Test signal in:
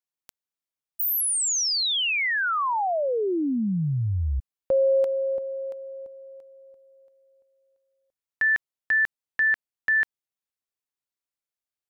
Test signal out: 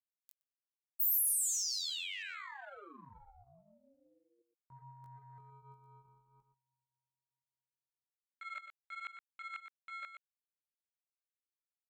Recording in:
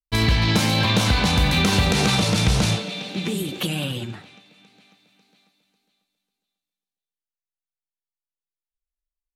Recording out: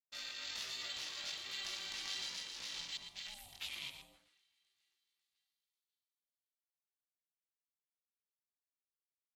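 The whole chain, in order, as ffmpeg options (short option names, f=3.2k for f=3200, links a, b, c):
-filter_complex "[0:a]equalizer=f=190:w=0.99:g=-6,flanger=delay=18:depth=3.1:speed=1.2,afwtdn=0.0158,areverse,acompressor=threshold=-37dB:ratio=5:attack=49:release=120:knee=6:detection=peak,areverse,aderivative,asplit=2[a][b];[b]aecho=0:1:119:0.355[c];[a][c]amix=inputs=2:normalize=0,aeval=exprs='val(0)*sin(2*PI*410*n/s)':c=same,volume=4dB"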